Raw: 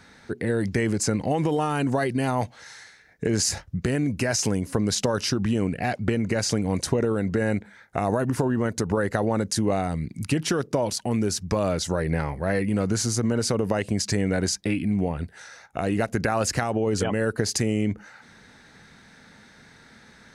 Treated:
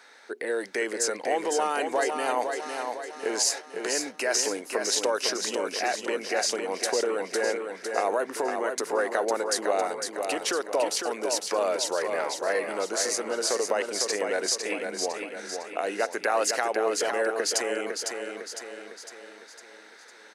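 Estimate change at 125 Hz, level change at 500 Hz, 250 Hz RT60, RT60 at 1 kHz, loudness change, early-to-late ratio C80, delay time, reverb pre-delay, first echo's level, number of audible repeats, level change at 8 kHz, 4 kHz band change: below −30 dB, 0.0 dB, no reverb audible, no reverb audible, −2.5 dB, no reverb audible, 505 ms, no reverb audible, −5.5 dB, 5, +1.5 dB, +1.5 dB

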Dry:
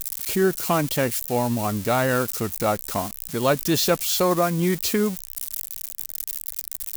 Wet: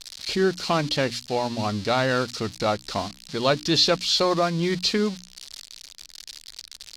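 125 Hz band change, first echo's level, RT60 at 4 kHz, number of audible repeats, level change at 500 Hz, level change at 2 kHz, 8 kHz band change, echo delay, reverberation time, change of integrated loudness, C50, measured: −2.5 dB, no echo audible, no reverb audible, no echo audible, −1.5 dB, 0.0 dB, −6.5 dB, no echo audible, no reverb audible, 0.0 dB, no reverb audible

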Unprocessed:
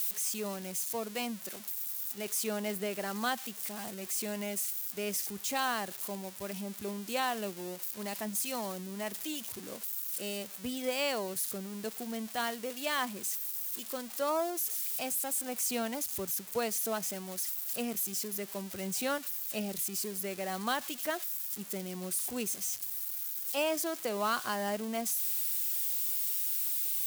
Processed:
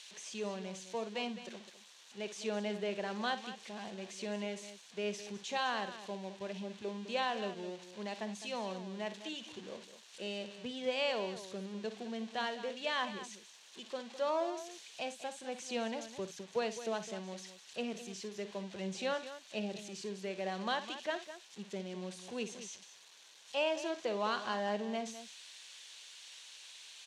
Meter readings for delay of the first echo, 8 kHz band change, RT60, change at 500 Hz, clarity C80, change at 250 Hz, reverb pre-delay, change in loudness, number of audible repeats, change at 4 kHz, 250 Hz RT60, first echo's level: 58 ms, −14.5 dB, no reverb audible, −1.0 dB, no reverb audible, −3.5 dB, no reverb audible, −6.0 dB, 2, −2.0 dB, no reverb audible, −12.5 dB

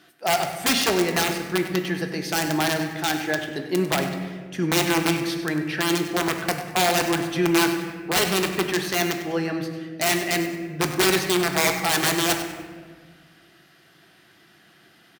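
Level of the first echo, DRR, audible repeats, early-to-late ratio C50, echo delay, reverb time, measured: −12.5 dB, 4.0 dB, 1, 6.0 dB, 98 ms, 1.6 s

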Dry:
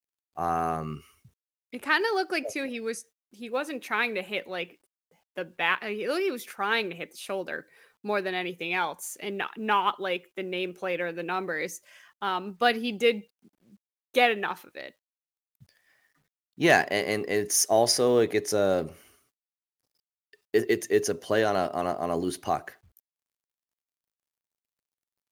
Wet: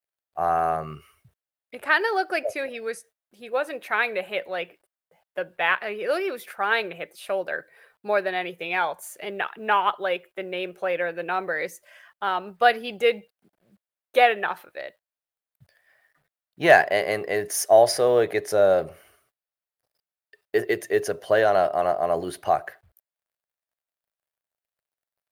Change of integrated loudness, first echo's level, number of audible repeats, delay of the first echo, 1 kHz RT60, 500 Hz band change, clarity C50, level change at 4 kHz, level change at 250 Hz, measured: +3.5 dB, no echo audible, no echo audible, no echo audible, no reverb audible, +4.5 dB, no reverb audible, −1.0 dB, −3.5 dB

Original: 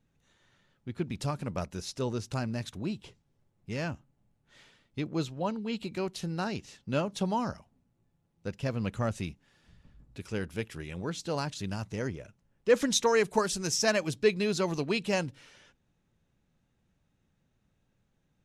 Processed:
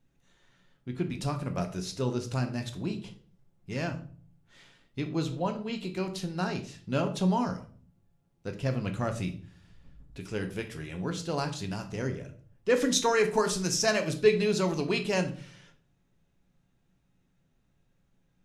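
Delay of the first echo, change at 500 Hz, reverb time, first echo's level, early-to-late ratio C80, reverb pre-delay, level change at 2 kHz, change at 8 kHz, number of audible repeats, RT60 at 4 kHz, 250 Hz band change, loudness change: no echo audible, +1.5 dB, 0.45 s, no echo audible, 16.5 dB, 3 ms, +1.0 dB, +1.0 dB, no echo audible, 0.35 s, +2.0 dB, +1.5 dB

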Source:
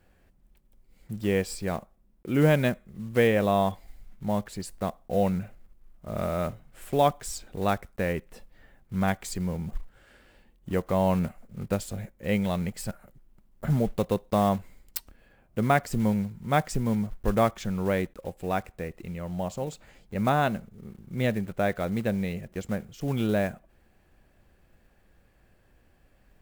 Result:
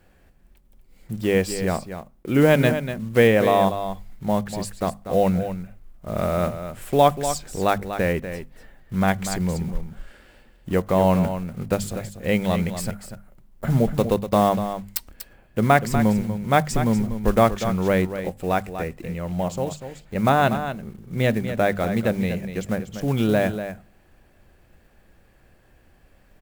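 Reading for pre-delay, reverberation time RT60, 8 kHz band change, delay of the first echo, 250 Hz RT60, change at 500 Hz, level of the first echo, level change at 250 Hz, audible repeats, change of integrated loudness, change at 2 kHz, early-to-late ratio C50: no reverb audible, no reverb audible, +6.5 dB, 242 ms, no reverb audible, +6.5 dB, −10.0 dB, +5.5 dB, 1, +6.0 dB, +6.5 dB, no reverb audible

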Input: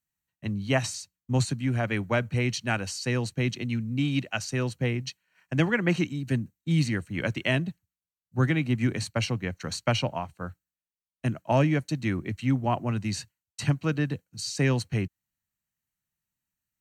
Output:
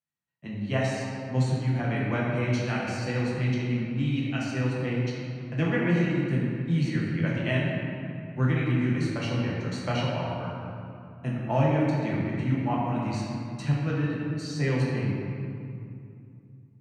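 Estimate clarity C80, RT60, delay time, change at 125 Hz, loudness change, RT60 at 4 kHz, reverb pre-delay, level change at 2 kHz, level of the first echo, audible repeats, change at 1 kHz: 0.5 dB, 2.6 s, no echo audible, +1.5 dB, 0.0 dB, 1.5 s, 6 ms, −1.5 dB, no echo audible, no echo audible, +0.5 dB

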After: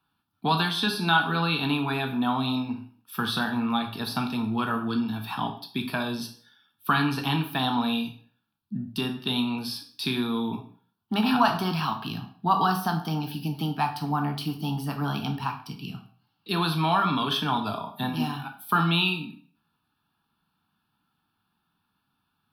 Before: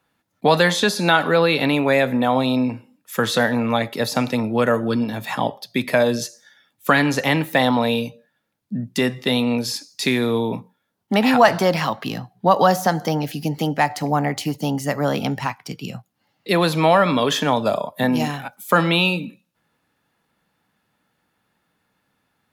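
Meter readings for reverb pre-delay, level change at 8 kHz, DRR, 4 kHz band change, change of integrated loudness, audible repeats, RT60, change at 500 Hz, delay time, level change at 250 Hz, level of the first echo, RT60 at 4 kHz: 12 ms, −13.0 dB, 4.5 dB, −4.0 dB, −7.0 dB, no echo audible, 0.45 s, −16.0 dB, no echo audible, −6.0 dB, no echo audible, 0.40 s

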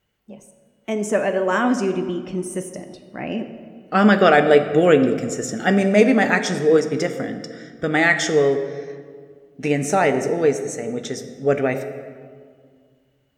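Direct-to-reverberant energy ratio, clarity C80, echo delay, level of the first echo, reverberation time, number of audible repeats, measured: 8.0 dB, 11.0 dB, no echo audible, no echo audible, 2.0 s, no echo audible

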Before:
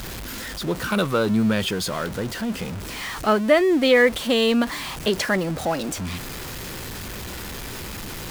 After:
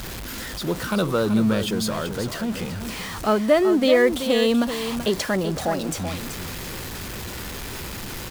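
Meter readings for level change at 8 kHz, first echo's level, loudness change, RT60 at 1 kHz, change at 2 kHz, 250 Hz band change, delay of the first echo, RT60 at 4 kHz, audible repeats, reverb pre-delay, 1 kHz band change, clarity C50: +0.5 dB, −9.0 dB, −0.5 dB, no reverb audible, −4.0 dB, +0.5 dB, 382 ms, no reverb audible, 1, no reverb audible, −1.0 dB, no reverb audible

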